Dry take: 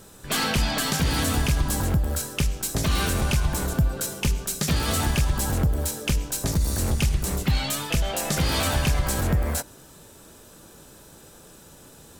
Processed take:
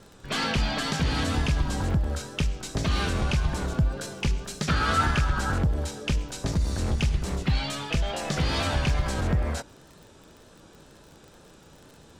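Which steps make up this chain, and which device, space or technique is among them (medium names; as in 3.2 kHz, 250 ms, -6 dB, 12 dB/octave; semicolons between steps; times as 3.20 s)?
lo-fi chain (low-pass 5.2 kHz 12 dB/octave; wow and flutter; crackle 45 per s -38 dBFS); 4.68–5.58 s: peaking EQ 1.4 kHz +14.5 dB 0.49 oct; trim -2 dB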